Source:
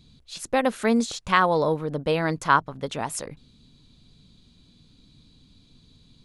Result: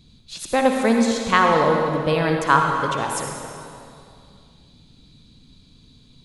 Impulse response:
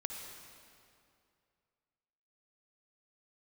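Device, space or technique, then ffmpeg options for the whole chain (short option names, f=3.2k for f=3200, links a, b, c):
stairwell: -filter_complex "[1:a]atrim=start_sample=2205[a];[0:a][a]afir=irnorm=-1:irlink=0,volume=4.5dB"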